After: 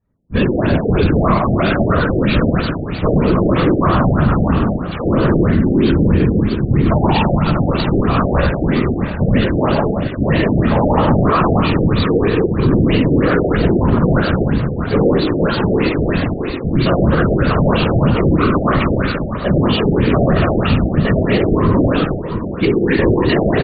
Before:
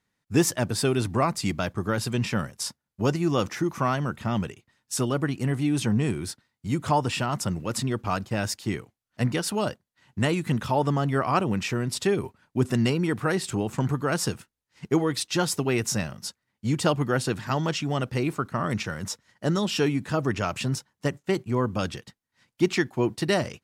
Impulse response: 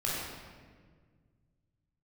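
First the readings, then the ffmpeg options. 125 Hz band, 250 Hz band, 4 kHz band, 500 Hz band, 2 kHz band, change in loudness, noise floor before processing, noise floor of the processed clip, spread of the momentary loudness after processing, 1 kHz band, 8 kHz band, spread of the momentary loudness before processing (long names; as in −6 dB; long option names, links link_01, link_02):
+13.0 dB, +13.0 dB, +6.5 dB, +12.0 dB, +10.0 dB, +11.5 dB, −83 dBFS, −23 dBFS, 4 LU, +10.5 dB, below −40 dB, 8 LU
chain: -filter_complex "[0:a]aemphasis=mode=production:type=50kf,adynamicsmooth=sensitivity=7:basefreq=630,asplit=2[link_01][link_02];[link_02]aecho=0:1:670|1340|2010|2680:0.2|0.0938|0.0441|0.0207[link_03];[link_01][link_03]amix=inputs=2:normalize=0[link_04];[1:a]atrim=start_sample=2205,afade=type=out:start_time=0.41:duration=0.01,atrim=end_sample=18522,asetrate=40131,aresample=44100[link_05];[link_04][link_05]afir=irnorm=-1:irlink=0,areverse,acompressor=mode=upward:threshold=-37dB:ratio=2.5,areverse,flanger=delay=2.9:depth=3.8:regen=-66:speed=0.37:shape=triangular,equalizer=frequency=5000:width_type=o:width=0.2:gain=9,bandreject=frequency=710:width=12,afftfilt=real='hypot(re,im)*cos(2*PI*random(0))':imag='hypot(re,im)*sin(2*PI*random(1))':win_size=512:overlap=0.75,alimiter=level_in=21dB:limit=-1dB:release=50:level=0:latency=1,afftfilt=real='re*lt(b*sr/1024,770*pow(4700/770,0.5+0.5*sin(2*PI*3.1*pts/sr)))':imag='im*lt(b*sr/1024,770*pow(4700/770,0.5+0.5*sin(2*PI*3.1*pts/sr)))':win_size=1024:overlap=0.75,volume=-3.5dB"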